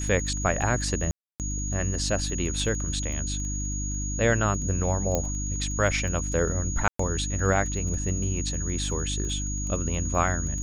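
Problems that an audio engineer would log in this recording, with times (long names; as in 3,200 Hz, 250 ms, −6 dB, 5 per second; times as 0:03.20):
surface crackle 12 per second −33 dBFS
mains hum 50 Hz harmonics 6 −31 dBFS
whistle 6,700 Hz −33 dBFS
0:01.11–0:01.40: drop-out 288 ms
0:05.15: click −11 dBFS
0:06.88–0:06.99: drop-out 114 ms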